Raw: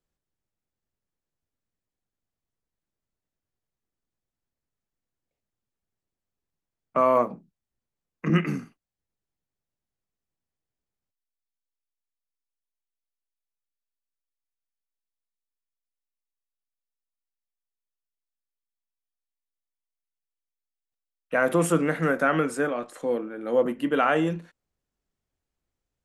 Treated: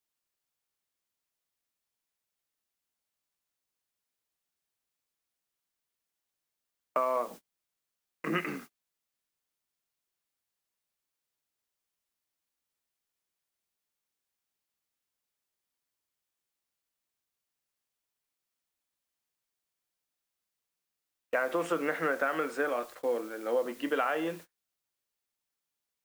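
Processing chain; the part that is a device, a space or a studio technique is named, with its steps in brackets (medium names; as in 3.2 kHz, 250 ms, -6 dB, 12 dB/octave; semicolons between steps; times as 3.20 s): baby monitor (band-pass 420–4000 Hz; compression 12:1, threshold -25 dBFS, peak gain reduction 9 dB; white noise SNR 16 dB; gate -45 dBFS, range -32 dB)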